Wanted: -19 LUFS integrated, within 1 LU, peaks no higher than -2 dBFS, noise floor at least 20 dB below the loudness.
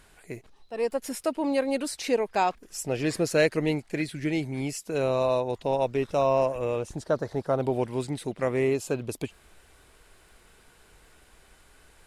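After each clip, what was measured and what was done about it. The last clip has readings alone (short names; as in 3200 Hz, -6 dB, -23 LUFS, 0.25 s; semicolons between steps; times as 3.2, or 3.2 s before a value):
ticks 22/s; loudness -28.0 LUFS; peak -9.5 dBFS; loudness target -19.0 LUFS
-> de-click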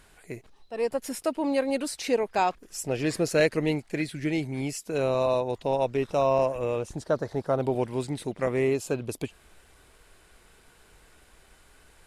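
ticks 0.083/s; loudness -28.0 LUFS; peak -9.5 dBFS; loudness target -19.0 LUFS
-> gain +9 dB; limiter -2 dBFS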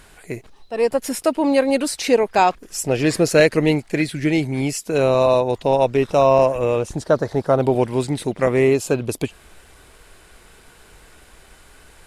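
loudness -19.0 LUFS; peak -2.0 dBFS; noise floor -49 dBFS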